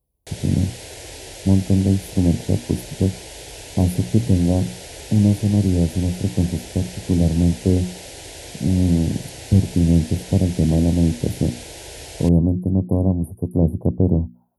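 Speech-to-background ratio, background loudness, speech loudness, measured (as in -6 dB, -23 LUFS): 15.5 dB, -35.5 LUFS, -20.0 LUFS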